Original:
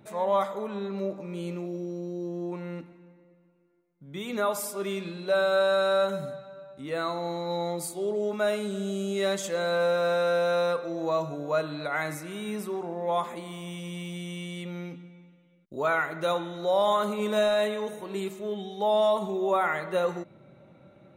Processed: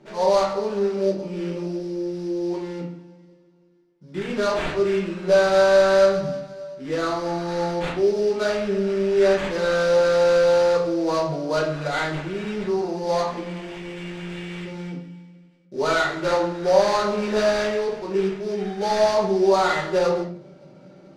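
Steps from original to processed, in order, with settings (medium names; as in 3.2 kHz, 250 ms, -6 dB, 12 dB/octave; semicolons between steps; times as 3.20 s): high-pass 150 Hz; treble shelf 9.5 kHz +3.5 dB; sample-rate reducer 5.4 kHz, jitter 20%; distance through air 82 m; reverberation RT60 0.45 s, pre-delay 5 ms, DRR -5 dB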